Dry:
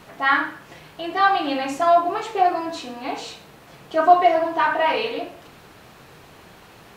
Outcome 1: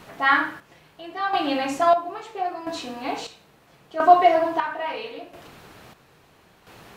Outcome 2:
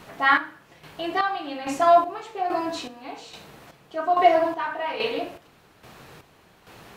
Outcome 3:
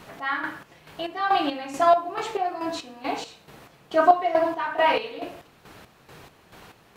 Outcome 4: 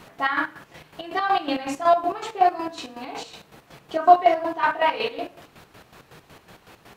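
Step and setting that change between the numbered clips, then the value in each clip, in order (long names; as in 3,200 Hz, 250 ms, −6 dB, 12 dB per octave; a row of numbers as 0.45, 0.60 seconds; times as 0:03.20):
square-wave tremolo, speed: 0.75, 1.2, 2.3, 5.4 Hertz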